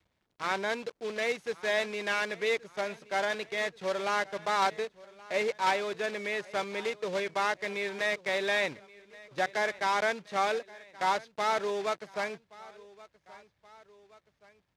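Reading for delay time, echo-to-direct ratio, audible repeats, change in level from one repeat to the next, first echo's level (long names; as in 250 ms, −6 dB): 1,125 ms, −20.0 dB, 2, −5.5 dB, −21.0 dB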